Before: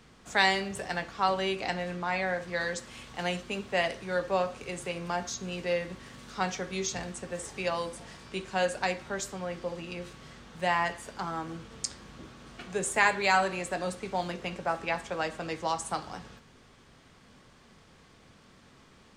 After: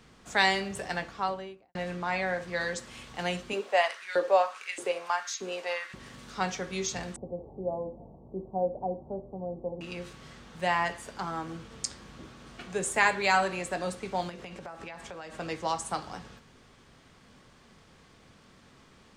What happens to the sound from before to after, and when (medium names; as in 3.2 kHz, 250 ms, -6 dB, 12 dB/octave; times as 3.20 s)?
0.97–1.75 s: studio fade out
3.53–5.94 s: LFO high-pass saw up 1.6 Hz 320–2400 Hz
7.16–9.81 s: steep low-pass 820 Hz 48 dB/octave
14.29–15.36 s: compression 10:1, threshold -38 dBFS